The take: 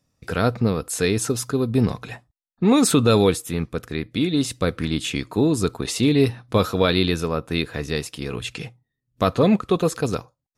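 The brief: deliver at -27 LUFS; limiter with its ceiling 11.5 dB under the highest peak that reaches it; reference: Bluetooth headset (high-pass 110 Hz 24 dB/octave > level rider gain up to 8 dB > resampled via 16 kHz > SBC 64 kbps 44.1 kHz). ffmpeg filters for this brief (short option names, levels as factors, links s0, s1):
-af "alimiter=limit=0.15:level=0:latency=1,highpass=f=110:w=0.5412,highpass=f=110:w=1.3066,dynaudnorm=m=2.51,aresample=16000,aresample=44100,volume=1.12" -ar 44100 -c:a sbc -b:a 64k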